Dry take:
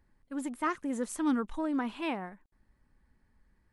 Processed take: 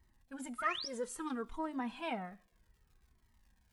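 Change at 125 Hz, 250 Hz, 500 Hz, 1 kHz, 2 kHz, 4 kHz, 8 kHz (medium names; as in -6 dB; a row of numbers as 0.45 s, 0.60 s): no reading, -10.5 dB, -4.0 dB, -3.5 dB, -2.0 dB, +4.5 dB, -4.0 dB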